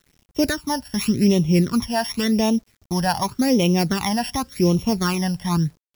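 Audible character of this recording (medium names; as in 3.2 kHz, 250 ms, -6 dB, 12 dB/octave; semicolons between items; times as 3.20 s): a buzz of ramps at a fixed pitch in blocks of 8 samples; phasing stages 12, 0.89 Hz, lowest notch 380–1600 Hz; a quantiser's noise floor 10-bit, dither none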